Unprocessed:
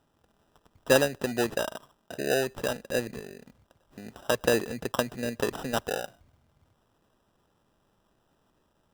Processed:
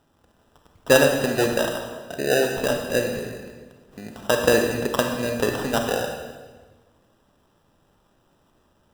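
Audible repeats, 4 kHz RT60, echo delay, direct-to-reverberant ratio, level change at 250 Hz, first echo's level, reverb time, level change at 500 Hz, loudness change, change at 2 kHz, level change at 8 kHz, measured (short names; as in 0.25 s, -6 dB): none, 1.2 s, none, 3.0 dB, +7.0 dB, none, 1.4 s, +7.0 dB, +6.5 dB, +7.0 dB, +6.5 dB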